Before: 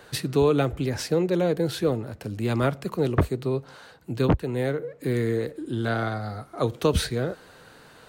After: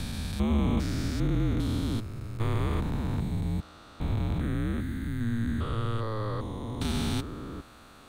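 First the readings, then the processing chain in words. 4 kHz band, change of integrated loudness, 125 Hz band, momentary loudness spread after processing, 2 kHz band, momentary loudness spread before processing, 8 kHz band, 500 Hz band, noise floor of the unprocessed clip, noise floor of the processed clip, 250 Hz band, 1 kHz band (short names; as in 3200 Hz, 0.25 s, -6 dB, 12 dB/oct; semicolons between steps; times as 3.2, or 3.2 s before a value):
-5.0 dB, -5.0 dB, -1.5 dB, 9 LU, -7.0 dB, 9 LU, -6.5 dB, -14.0 dB, -51 dBFS, -52 dBFS, -3.0 dB, -6.5 dB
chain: stepped spectrum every 0.4 s; frequency shift -220 Hz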